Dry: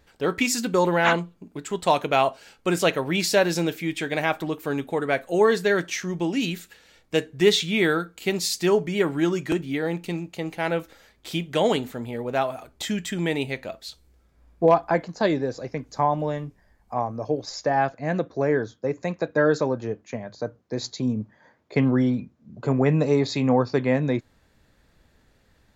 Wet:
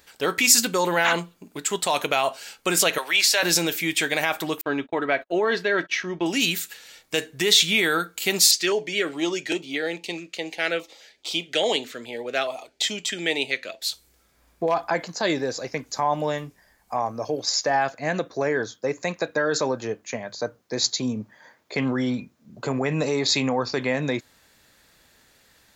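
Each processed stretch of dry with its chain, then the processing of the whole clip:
2.98–3.43 s: Bessel high-pass 910 Hz + treble shelf 5.9 kHz -9.5 dB + three bands compressed up and down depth 40%
4.61–6.26 s: comb 3.1 ms, depth 35% + gate -38 dBFS, range -41 dB + distance through air 260 m
8.51–13.82 s: three-band isolator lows -13 dB, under 280 Hz, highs -20 dB, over 6.6 kHz + step-sequenced notch 4.8 Hz 840–1700 Hz
whole clip: peak limiter -16 dBFS; tilt EQ +3 dB/octave; trim +4.5 dB

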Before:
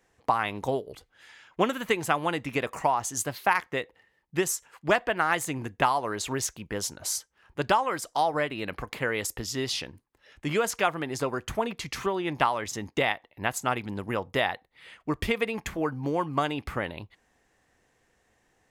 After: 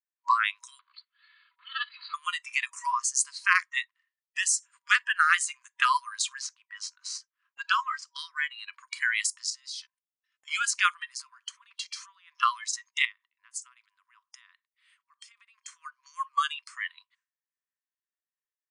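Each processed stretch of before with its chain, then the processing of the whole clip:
0.79–2.14 s: comb filter that takes the minimum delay 2.3 ms + brick-wall FIR low-pass 4.8 kHz + compressor with a negative ratio -33 dBFS
6.39–8.65 s: median filter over 5 samples + treble shelf 6.3 kHz -8.5 dB
9.50–10.48 s: comb 3.9 ms, depth 48% + level held to a coarse grid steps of 21 dB
11.12–12.43 s: peaking EQ 7.7 kHz -4.5 dB 0.7 oct + compression 8:1, threshold -32 dBFS
13.05–15.68 s: compression 12:1, threshold -37 dBFS + three bands expanded up and down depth 40%
whole clip: FFT band-pass 960–10000 Hz; expander -59 dBFS; spectral noise reduction 18 dB; trim +5.5 dB

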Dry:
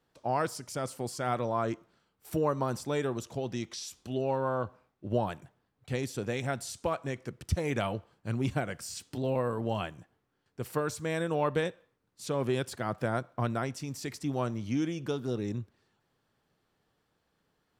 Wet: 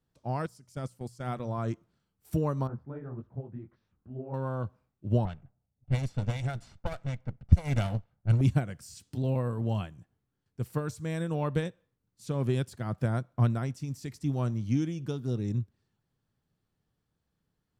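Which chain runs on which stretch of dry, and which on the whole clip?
0.46–1.58 s: hum notches 60/120/180 Hz + gate -37 dBFS, range -9 dB
2.67–4.34 s: Chebyshev low-pass 1.5 kHz, order 3 + detune thickener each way 58 cents
5.25–8.41 s: comb filter that takes the minimum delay 1.4 ms + level-controlled noise filter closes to 580 Hz, open at -28.5 dBFS
whole clip: tone controls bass +13 dB, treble +4 dB; upward expansion 1.5:1, over -35 dBFS

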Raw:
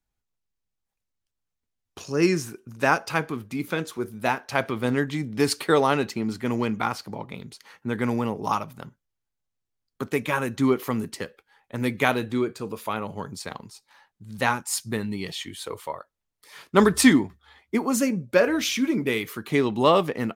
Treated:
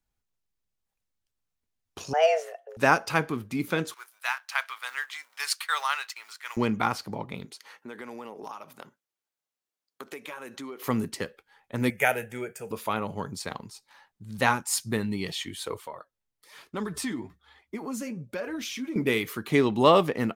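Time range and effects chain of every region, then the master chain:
2.13–2.77 s: tone controls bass -3 dB, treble -14 dB + frequency shift +310 Hz
3.94–6.57 s: companding laws mixed up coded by A + high-pass 1.1 kHz 24 dB/octave + de-esser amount 35%
7.45–10.84 s: high-pass 360 Hz + compression 5:1, threshold -37 dBFS
11.90–12.71 s: high-pass 240 Hz 6 dB/octave + treble shelf 4.7 kHz +7 dB + static phaser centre 1.1 kHz, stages 6
15.77–18.96 s: flange 1.1 Hz, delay 2.2 ms, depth 7.7 ms, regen +44% + compression 2.5:1, threshold -34 dBFS
whole clip: none

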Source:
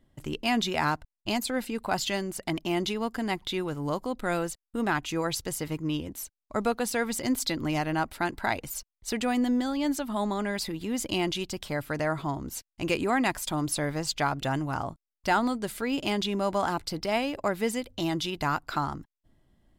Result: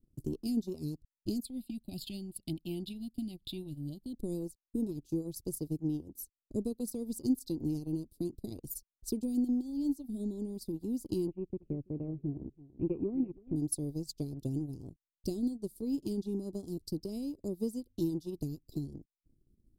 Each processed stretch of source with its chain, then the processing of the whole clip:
1.45–4.13 s: peaking EQ 2.6 kHz +15 dB 2.2 oct + static phaser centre 1.7 kHz, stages 6
11.27–13.56 s: steep low-pass 2.6 kHz 96 dB/octave + delay 330 ms -14 dB
whole clip: elliptic band-stop 380–4600 Hz, stop band 60 dB; high-order bell 4.7 kHz -8 dB; transient shaper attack +6 dB, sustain -11 dB; trim -4.5 dB

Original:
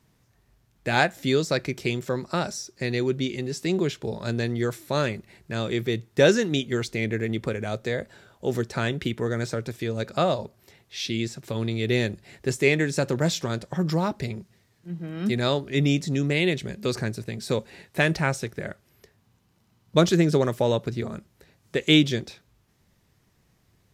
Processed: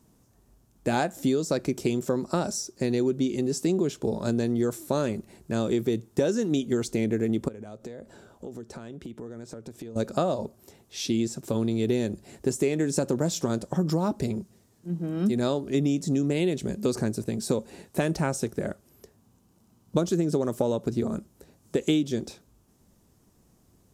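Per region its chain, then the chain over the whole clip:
7.48–9.96 s: treble shelf 6.9 kHz -7 dB + compression 8:1, threshold -40 dBFS
whole clip: graphic EQ 125/250/2000/4000/8000 Hz -5/+5/-11/-6/+4 dB; compression 12:1, threshold -24 dBFS; trim +3.5 dB

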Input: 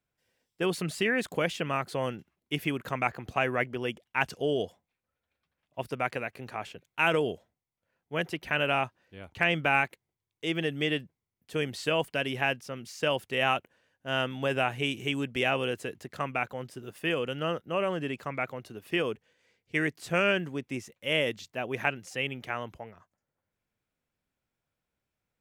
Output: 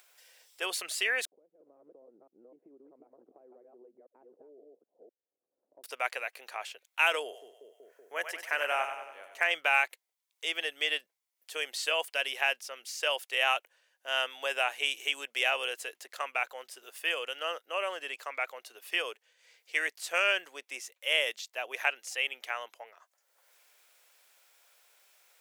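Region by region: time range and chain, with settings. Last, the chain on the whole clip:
1.25–5.84 s: chunks repeated in reverse 256 ms, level -4 dB + compression 8:1, threshold -34 dBFS + four-pole ladder low-pass 370 Hz, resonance 30%
7.23–9.51 s: high-order bell 3.5 kHz -8.5 dB 1.1 oct + two-band feedback delay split 530 Hz, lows 189 ms, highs 95 ms, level -7.5 dB
whole clip: high-pass 520 Hz 24 dB/octave; treble shelf 2.3 kHz +10.5 dB; upward compressor, threshold -42 dBFS; trim -4 dB

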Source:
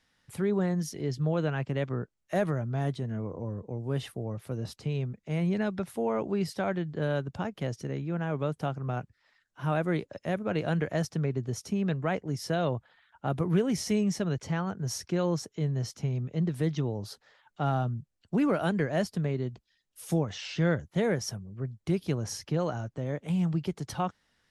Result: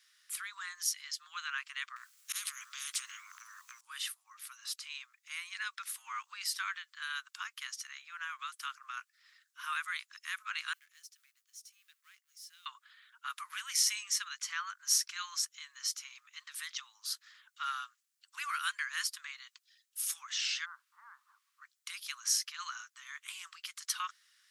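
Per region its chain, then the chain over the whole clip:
1.96–3.81 s: slow attack 159 ms + compression 10:1, threshold -33 dBFS + spectrum-flattening compressor 10:1
10.73–12.66 s: companding laws mixed up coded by mu + amplifier tone stack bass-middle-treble 10-0-1
20.64–21.60 s: steep low-pass 1.1 kHz + upward compressor, threshold -40 dBFS + added noise brown -65 dBFS
whole clip: steep high-pass 1.1 kHz 72 dB/octave; treble shelf 3.6 kHz +11.5 dB

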